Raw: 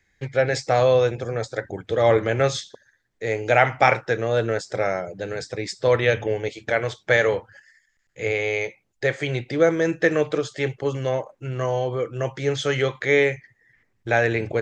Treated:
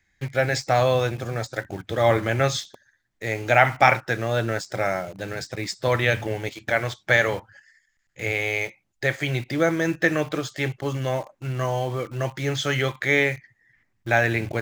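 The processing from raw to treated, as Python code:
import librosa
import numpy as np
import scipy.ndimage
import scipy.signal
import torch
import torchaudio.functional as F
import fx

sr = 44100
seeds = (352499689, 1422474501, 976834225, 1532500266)

p1 = fx.peak_eq(x, sr, hz=460.0, db=-10.0, octaves=0.43)
p2 = fx.quant_dither(p1, sr, seeds[0], bits=6, dither='none')
p3 = p1 + F.gain(torch.from_numpy(p2), -8.0).numpy()
y = F.gain(torch.from_numpy(p3), -1.5).numpy()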